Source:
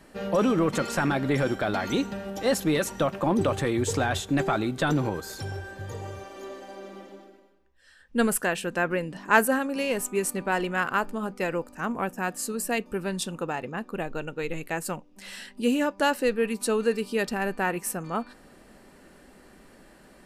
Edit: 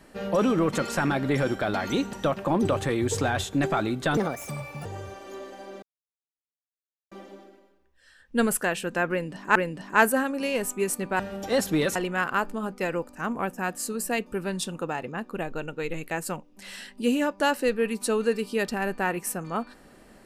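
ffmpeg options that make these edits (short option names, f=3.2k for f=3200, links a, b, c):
-filter_complex "[0:a]asplit=8[a][b][c][d][e][f][g][h];[a]atrim=end=2.132[i];[b]atrim=start=2.888:end=4.934[j];[c]atrim=start=4.93:end=5.95,asetpts=PTS-STARTPTS,asetrate=65709,aresample=44100,atrim=end_sample=30189,asetpts=PTS-STARTPTS[k];[d]atrim=start=5.946:end=6.92,asetpts=PTS-STARTPTS,afade=t=out:st=0.97:d=0.004:c=hsin,apad=pad_dur=1.29[l];[e]atrim=start=6.92:end=9.362,asetpts=PTS-STARTPTS,afade=t=in:d=0.004:c=hsin[m];[f]atrim=start=8.908:end=10.552[n];[g]atrim=start=2.128:end=2.892[o];[h]atrim=start=10.548[p];[i][j]acrossfade=d=0.004:c1=hsin:c2=hsin[q];[q][k]acrossfade=d=0.004:c1=hsin:c2=hsin[r];[l][m]concat=n=2:v=0:a=1[s];[r][s]acrossfade=d=0.004:c1=hsin:c2=hsin[t];[t][n]acrossfade=d=0.004:c1=hsin:c2=hsin[u];[u][o]acrossfade=d=0.004:c1=hsin:c2=hsin[v];[v][p]acrossfade=d=0.004:c1=hsin:c2=hsin"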